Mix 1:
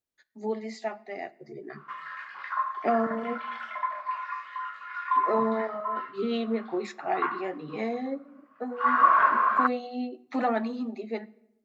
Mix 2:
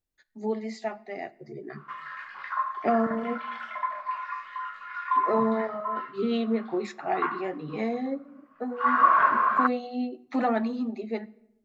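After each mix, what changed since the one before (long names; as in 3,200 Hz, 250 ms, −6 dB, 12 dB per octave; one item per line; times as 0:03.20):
master: remove high-pass filter 230 Hz 6 dB per octave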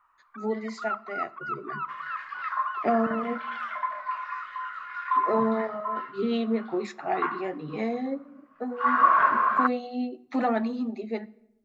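first sound: unmuted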